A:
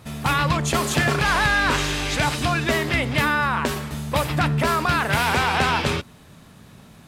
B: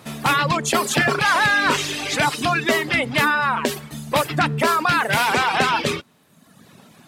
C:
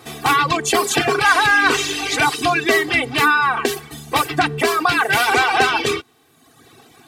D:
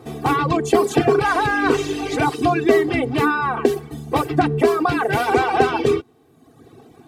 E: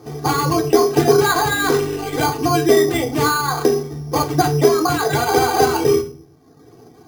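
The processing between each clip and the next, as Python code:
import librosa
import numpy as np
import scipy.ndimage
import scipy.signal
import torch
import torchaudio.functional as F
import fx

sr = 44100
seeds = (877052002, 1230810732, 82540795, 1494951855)

y1 = scipy.signal.sosfilt(scipy.signal.butter(2, 180.0, 'highpass', fs=sr, output='sos'), x)
y1 = fx.dereverb_blind(y1, sr, rt60_s=1.1)
y1 = y1 * 10.0 ** (4.0 / 20.0)
y2 = fx.peak_eq(y1, sr, hz=87.0, db=-2.5, octaves=1.1)
y2 = y2 + 0.96 * np.pad(y2, (int(2.6 * sr / 1000.0), 0))[:len(y2)]
y3 = fx.curve_eq(y2, sr, hz=(450.0, 1600.0, 3500.0), db=(0, -13, -16))
y3 = y3 * 10.0 ** (5.0 / 20.0)
y4 = fx.room_shoebox(y3, sr, seeds[0], volume_m3=33.0, walls='mixed', distance_m=0.44)
y4 = np.repeat(scipy.signal.resample_poly(y4, 1, 8), 8)[:len(y4)]
y4 = y4 * 10.0 ** (-1.5 / 20.0)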